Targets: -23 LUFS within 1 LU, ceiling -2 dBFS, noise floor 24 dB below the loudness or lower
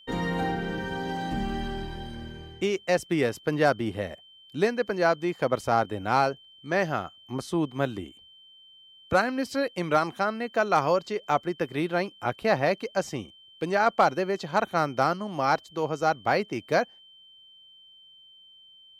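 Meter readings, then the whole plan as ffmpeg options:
steady tone 3100 Hz; tone level -51 dBFS; loudness -27.0 LUFS; peak -9.5 dBFS; loudness target -23.0 LUFS
-> -af "bandreject=f=3.1k:w=30"
-af "volume=4dB"

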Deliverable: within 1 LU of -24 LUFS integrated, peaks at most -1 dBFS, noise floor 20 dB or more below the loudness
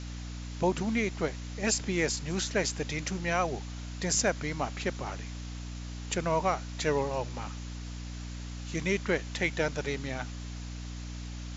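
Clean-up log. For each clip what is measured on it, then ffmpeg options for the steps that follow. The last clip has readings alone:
hum 60 Hz; harmonics up to 300 Hz; hum level -37 dBFS; noise floor -40 dBFS; noise floor target -53 dBFS; loudness -32.5 LUFS; peak -14.0 dBFS; loudness target -24.0 LUFS
-> -af "bandreject=f=60:t=h:w=4,bandreject=f=120:t=h:w=4,bandreject=f=180:t=h:w=4,bandreject=f=240:t=h:w=4,bandreject=f=300:t=h:w=4"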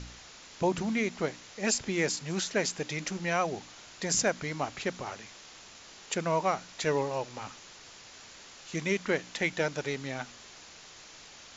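hum none; noise floor -51 dBFS; noise floor target -52 dBFS
-> -af "afftdn=nr=6:nf=-51"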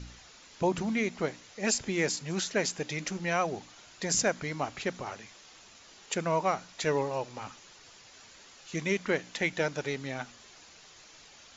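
noise floor -55 dBFS; loudness -31.5 LUFS; peak -14.5 dBFS; loudness target -24.0 LUFS
-> -af "volume=7.5dB"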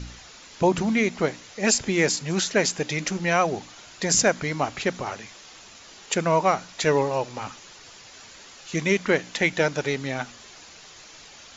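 loudness -24.0 LUFS; peak -7.0 dBFS; noise floor -47 dBFS

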